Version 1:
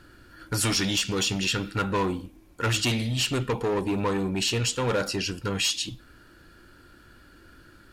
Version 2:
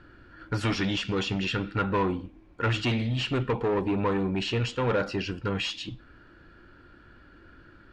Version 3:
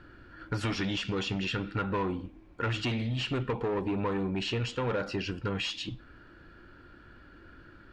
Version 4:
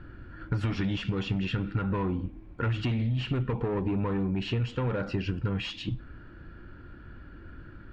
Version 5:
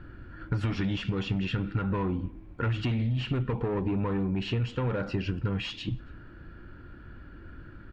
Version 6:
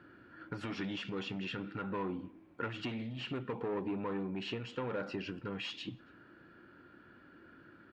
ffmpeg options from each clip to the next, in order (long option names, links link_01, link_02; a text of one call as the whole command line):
ffmpeg -i in.wav -af "lowpass=2700" out.wav
ffmpeg -i in.wav -af "acompressor=threshold=-30dB:ratio=2.5" out.wav
ffmpeg -i in.wav -af "bass=frequency=250:gain=9,treble=frequency=4000:gain=-10,acompressor=threshold=-26dB:ratio=6,volume=1dB" out.wav
ffmpeg -i in.wav -filter_complex "[0:a]asplit=2[link_01][link_02];[link_02]adelay=279.9,volume=-28dB,highshelf=frequency=4000:gain=-6.3[link_03];[link_01][link_03]amix=inputs=2:normalize=0" out.wav
ffmpeg -i in.wav -af "highpass=240,volume=-5dB" out.wav